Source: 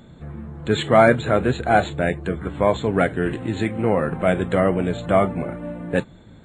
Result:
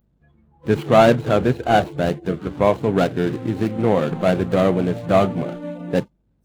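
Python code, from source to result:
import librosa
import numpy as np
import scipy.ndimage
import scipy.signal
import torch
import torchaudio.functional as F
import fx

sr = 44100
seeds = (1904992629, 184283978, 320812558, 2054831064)

y = scipy.ndimage.median_filter(x, 25, mode='constant')
y = fx.add_hum(y, sr, base_hz=50, snr_db=22)
y = fx.noise_reduce_blind(y, sr, reduce_db=25)
y = F.gain(torch.from_numpy(y), 2.5).numpy()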